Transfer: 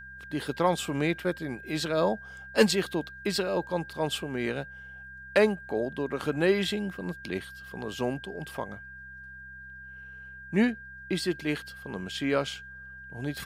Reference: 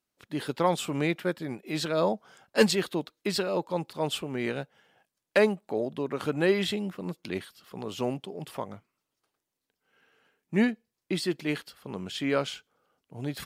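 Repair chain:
hum removal 65 Hz, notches 3
notch filter 1,600 Hz, Q 30

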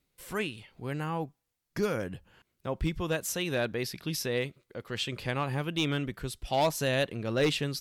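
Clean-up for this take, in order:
clipped peaks rebuilt −19.5 dBFS

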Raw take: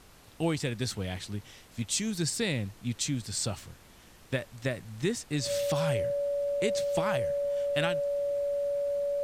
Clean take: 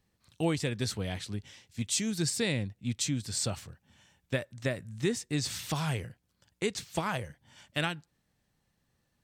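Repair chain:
notch filter 570 Hz, Q 30
noise reduction from a noise print 21 dB

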